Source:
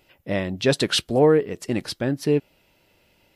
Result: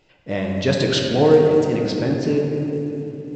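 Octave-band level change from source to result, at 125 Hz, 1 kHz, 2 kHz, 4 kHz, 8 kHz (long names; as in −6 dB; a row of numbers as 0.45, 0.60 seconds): +5.0, +3.5, +1.0, +0.5, −2.5 decibels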